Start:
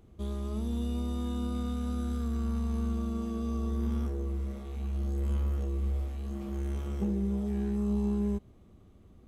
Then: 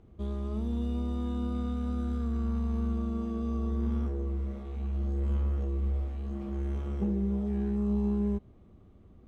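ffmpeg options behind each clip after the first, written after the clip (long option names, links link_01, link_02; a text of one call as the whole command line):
ffmpeg -i in.wav -af "aemphasis=mode=reproduction:type=75fm" out.wav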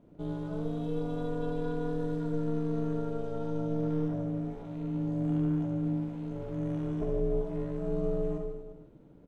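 ffmpeg -i in.wav -af "aecho=1:1:70|150.5|243.1|349.5|472:0.631|0.398|0.251|0.158|0.1,aeval=exprs='val(0)*sin(2*PI*230*n/s)':channel_layout=same" out.wav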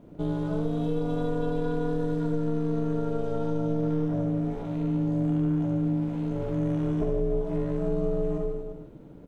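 ffmpeg -i in.wav -af "acompressor=threshold=-32dB:ratio=3,volume=8.5dB" out.wav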